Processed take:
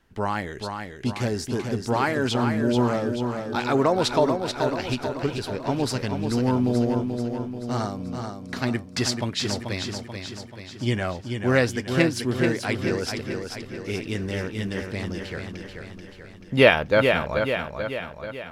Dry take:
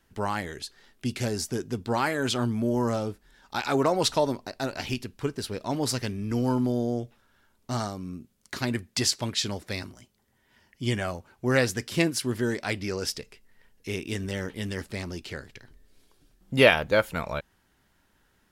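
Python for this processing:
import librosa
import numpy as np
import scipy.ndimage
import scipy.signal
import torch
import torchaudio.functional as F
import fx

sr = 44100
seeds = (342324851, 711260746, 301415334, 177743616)

y = fx.high_shelf(x, sr, hz=5800.0, db=-11.0)
y = fx.echo_feedback(y, sr, ms=435, feedback_pct=55, wet_db=-6.0)
y = y * 10.0 ** (3.0 / 20.0)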